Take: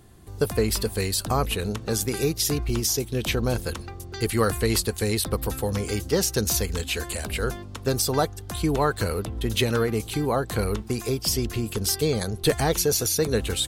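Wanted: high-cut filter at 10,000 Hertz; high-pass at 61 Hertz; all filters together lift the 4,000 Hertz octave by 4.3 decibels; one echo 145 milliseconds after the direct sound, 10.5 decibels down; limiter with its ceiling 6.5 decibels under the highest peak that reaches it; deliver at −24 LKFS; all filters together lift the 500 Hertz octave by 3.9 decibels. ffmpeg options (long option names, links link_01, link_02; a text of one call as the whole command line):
ffmpeg -i in.wav -af "highpass=61,lowpass=10000,equalizer=frequency=500:width_type=o:gain=4.5,equalizer=frequency=4000:width_type=o:gain=5.5,alimiter=limit=-12dB:level=0:latency=1,aecho=1:1:145:0.299" out.wav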